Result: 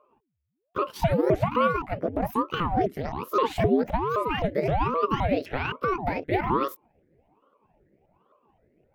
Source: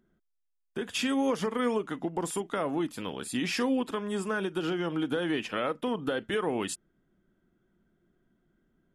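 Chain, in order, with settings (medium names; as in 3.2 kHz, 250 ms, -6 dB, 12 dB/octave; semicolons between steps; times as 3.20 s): sawtooth pitch modulation +10 st, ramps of 260 ms; graphic EQ 125/250/500/1000/2000/4000/8000 Hz +4/+11/+11/-11/+10/-6/-10 dB; ring modulator with a swept carrier 450 Hz, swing 85%, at 1.2 Hz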